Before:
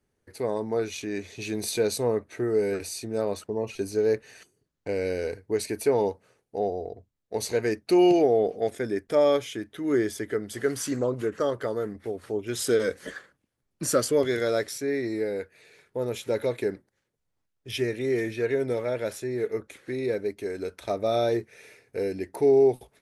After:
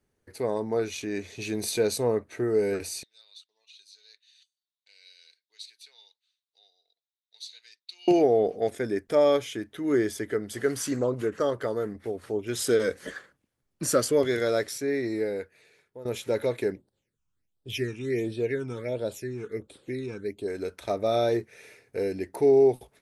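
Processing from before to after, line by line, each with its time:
0:03.03–0:08.08: four-pole ladder band-pass 3,900 Hz, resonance 80%
0:15.25–0:16.05: fade out, to −15.5 dB
0:16.72–0:20.48: all-pass phaser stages 8, 1.4 Hz, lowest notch 550–2,100 Hz

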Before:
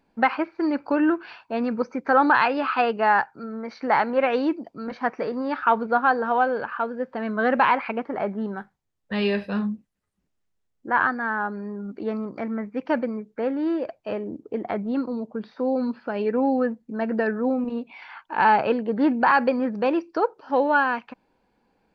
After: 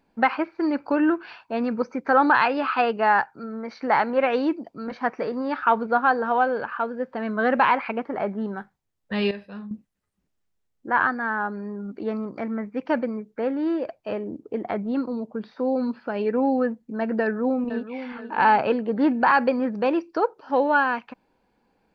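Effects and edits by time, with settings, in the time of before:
0:09.31–0:09.71: clip gain −11.5 dB
0:17.22–0:17.92: delay throw 480 ms, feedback 40%, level −10.5 dB

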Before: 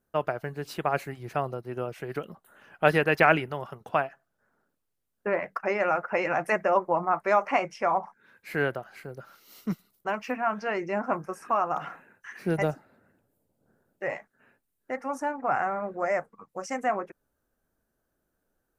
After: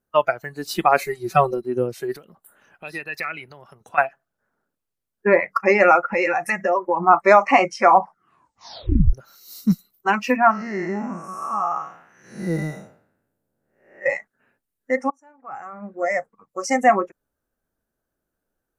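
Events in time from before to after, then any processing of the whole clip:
0:01.01–0:01.64: comb filter 5.3 ms, depth 57%
0:02.16–0:03.98: downward compressor 2 to 1, threshold −43 dBFS
0:06.03–0:07.07: downward compressor 4 to 1, threshold −27 dBFS
0:08.02: tape stop 1.11 s
0:10.51–0:14.06: spectrum smeared in time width 306 ms
0:15.10–0:16.71: fade in
whole clip: noise reduction from a noise print of the clip's start 15 dB; boost into a limiter +13.5 dB; level −1 dB

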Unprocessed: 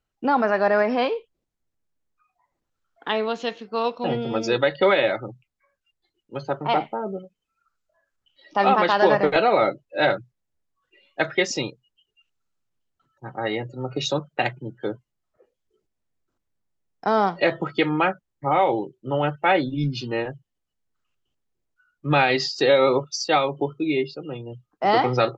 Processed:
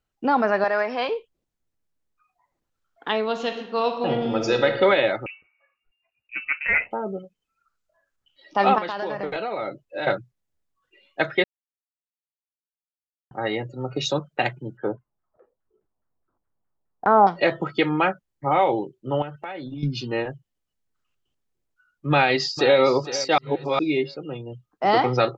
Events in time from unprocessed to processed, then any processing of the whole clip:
0:00.64–0:01.09: high-pass filter 730 Hz 6 dB per octave
0:03.25–0:04.68: thrown reverb, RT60 1.1 s, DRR 5.5 dB
0:05.26–0:06.91: voice inversion scrambler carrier 2,800 Hz
0:08.78–0:10.07: downward compressor, threshold −25 dBFS
0:11.44–0:13.31: silence
0:14.77–0:17.27: auto-filter low-pass saw down 4.8 Hz 750–1,500 Hz
0:19.22–0:19.83: downward compressor 12 to 1, threshold −30 dBFS
0:22.11–0:22.78: delay throw 460 ms, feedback 30%, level −13 dB
0:23.38–0:23.79: reverse

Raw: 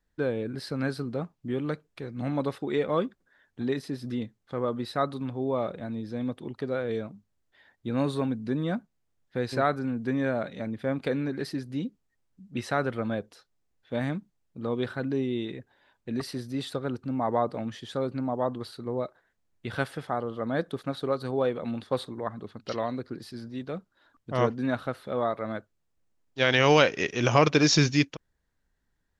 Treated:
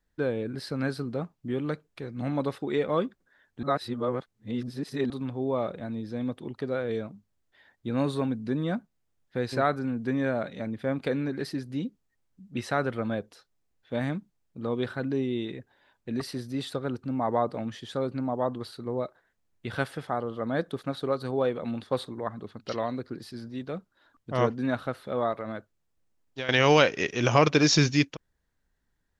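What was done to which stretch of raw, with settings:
0:03.63–0:05.10: reverse
0:25.32–0:26.49: downward compressor, threshold −29 dBFS

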